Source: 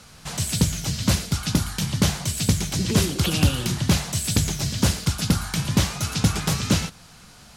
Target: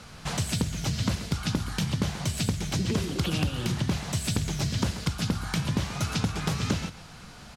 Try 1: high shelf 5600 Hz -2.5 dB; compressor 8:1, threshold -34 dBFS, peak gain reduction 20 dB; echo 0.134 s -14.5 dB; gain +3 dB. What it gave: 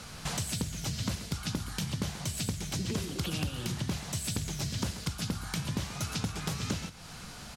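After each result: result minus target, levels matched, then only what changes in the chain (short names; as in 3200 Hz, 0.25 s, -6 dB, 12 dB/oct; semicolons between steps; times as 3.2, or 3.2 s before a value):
compressor: peak gain reduction +6 dB; 8000 Hz band +4.0 dB
change: compressor 8:1, threshold -27 dBFS, peak gain reduction 14 dB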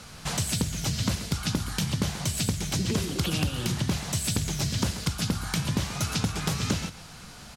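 8000 Hz band +3.5 dB
change: high shelf 5600 Hz -10.5 dB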